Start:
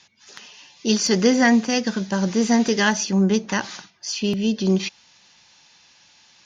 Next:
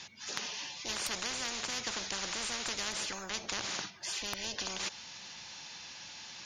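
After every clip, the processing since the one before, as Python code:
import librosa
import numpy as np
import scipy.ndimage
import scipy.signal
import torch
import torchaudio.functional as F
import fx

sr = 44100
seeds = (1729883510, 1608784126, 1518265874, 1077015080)

y = fx.spectral_comp(x, sr, ratio=10.0)
y = F.gain(torch.from_numpy(y), -9.0).numpy()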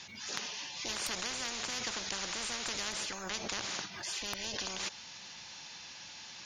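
y = fx.pre_swell(x, sr, db_per_s=55.0)
y = F.gain(torch.from_numpy(y), -1.0).numpy()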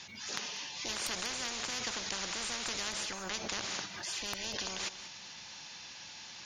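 y = x + 10.0 ** (-13.5 / 20.0) * np.pad(x, (int(190 * sr / 1000.0), 0))[:len(x)]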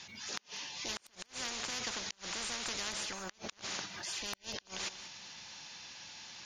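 y = fx.gate_flip(x, sr, shuts_db=-22.0, range_db=-31)
y = F.gain(torch.from_numpy(y), -1.5).numpy()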